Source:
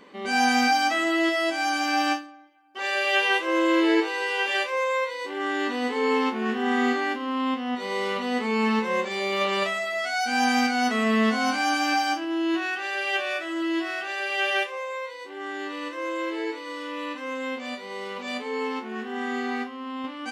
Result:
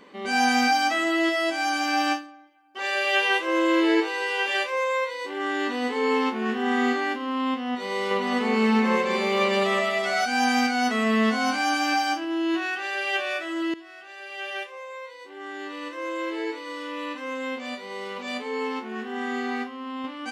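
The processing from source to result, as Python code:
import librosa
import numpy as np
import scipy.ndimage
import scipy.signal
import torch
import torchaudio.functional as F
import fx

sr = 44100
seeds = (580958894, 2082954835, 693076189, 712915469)

y = fx.echo_alternate(x, sr, ms=158, hz=2000.0, feedback_pct=66, wet_db=-2.0, at=(7.95, 10.26))
y = fx.edit(y, sr, fx.fade_in_from(start_s=13.74, length_s=2.68, floor_db=-18.0), tone=tone)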